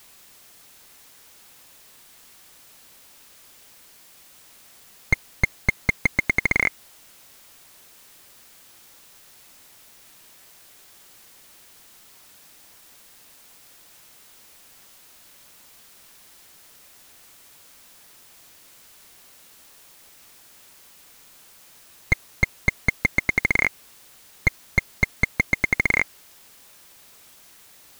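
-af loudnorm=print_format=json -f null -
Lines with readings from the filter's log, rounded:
"input_i" : "-22.9",
"input_tp" : "-5.7",
"input_lra" : "23.8",
"input_thresh" : "-39.3",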